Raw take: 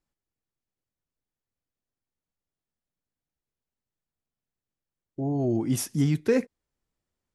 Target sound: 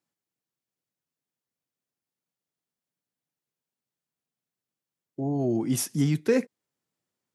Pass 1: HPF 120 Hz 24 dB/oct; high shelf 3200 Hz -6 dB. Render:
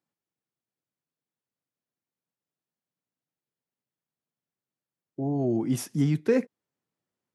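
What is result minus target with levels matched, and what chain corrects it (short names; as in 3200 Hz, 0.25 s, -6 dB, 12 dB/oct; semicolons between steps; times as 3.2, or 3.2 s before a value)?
8000 Hz band -7.0 dB
HPF 120 Hz 24 dB/oct; high shelf 3200 Hz +2.5 dB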